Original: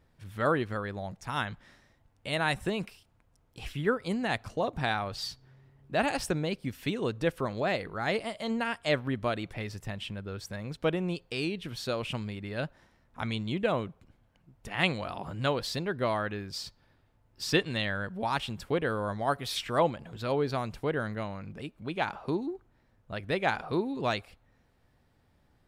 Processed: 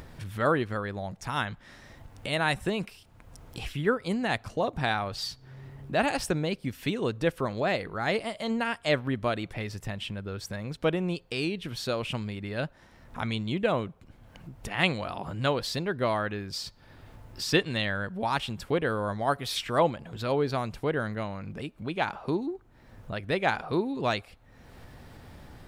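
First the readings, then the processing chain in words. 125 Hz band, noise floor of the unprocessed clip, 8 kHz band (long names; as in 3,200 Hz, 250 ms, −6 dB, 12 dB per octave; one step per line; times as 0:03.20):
+2.0 dB, −68 dBFS, +2.5 dB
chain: upward compression, threshold −34 dBFS
level +2 dB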